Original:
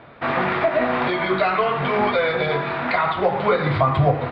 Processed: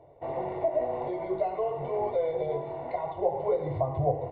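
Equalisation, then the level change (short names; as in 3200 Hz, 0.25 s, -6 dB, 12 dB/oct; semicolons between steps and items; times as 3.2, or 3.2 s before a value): polynomial smoothing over 65 samples; fixed phaser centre 530 Hz, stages 4; -6.0 dB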